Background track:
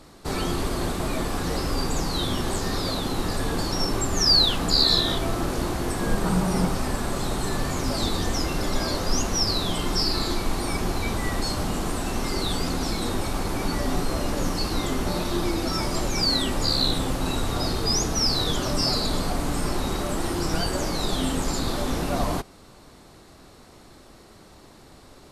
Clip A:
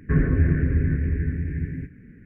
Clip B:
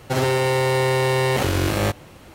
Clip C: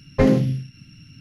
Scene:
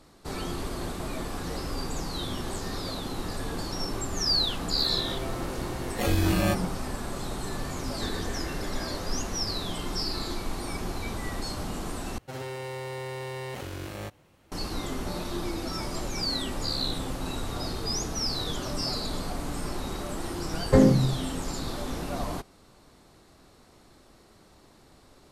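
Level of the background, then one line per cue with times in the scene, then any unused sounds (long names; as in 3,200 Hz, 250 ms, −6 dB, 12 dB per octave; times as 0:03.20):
background track −7 dB
0:04.63: mix in B −1 dB + noise reduction from a noise print of the clip's start 22 dB
0:07.92: mix in A −7 dB + high-pass filter 410 Hz 24 dB per octave
0:12.18: overwrite with B −16.5 dB
0:20.54: mix in C −1.5 dB + parametric band 2,500 Hz −11.5 dB 0.55 octaves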